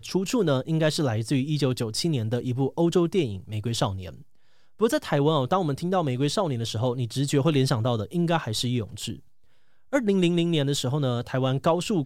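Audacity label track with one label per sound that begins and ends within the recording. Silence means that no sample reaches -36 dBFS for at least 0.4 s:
4.810000	9.170000	sound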